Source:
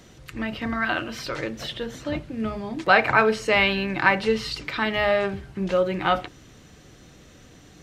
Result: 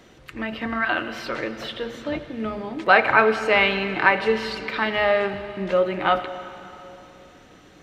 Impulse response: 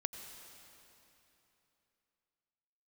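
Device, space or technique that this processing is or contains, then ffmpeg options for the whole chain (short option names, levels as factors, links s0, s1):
filtered reverb send: -filter_complex "[0:a]asplit=2[s0][s1];[s1]highpass=210,lowpass=4000[s2];[1:a]atrim=start_sample=2205[s3];[s2][s3]afir=irnorm=-1:irlink=0,volume=1.26[s4];[s0][s4]amix=inputs=2:normalize=0,volume=0.596"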